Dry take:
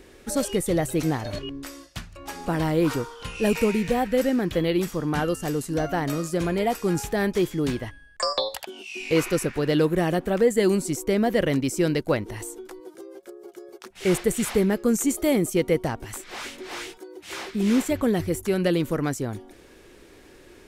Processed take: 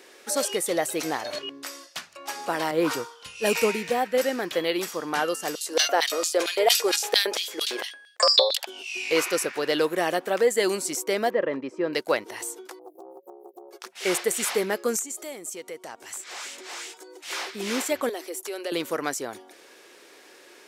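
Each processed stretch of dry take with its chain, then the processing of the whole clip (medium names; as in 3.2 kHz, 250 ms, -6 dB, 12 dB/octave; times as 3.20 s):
2.71–4.18 s: peaking EQ 78 Hz +11 dB 2.4 oct + three bands expanded up and down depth 100%
5.55–8.58 s: bass shelf 110 Hz -11 dB + LFO high-pass square 4.4 Hz 440–3500 Hz + decay stretcher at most 110 dB/s
11.30–11.93 s: low-pass 1.4 kHz + comb of notches 730 Hz
12.79–13.71 s: brick-wall FIR band-stop 590–12000 Hz + loudspeaker Doppler distortion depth 0.36 ms
14.99–17.24 s: peaking EQ 7.5 kHz +8 dB 0.52 oct + compression 2.5:1, threshold -39 dBFS
18.09–18.72 s: steep high-pass 280 Hz 48 dB/octave + peaking EQ 1.6 kHz -4.5 dB 1.5 oct + compression 2:1, threshold -32 dBFS
whole clip: high-pass 530 Hz 12 dB/octave; peaking EQ 5.2 kHz +3 dB 0.77 oct; trim +3 dB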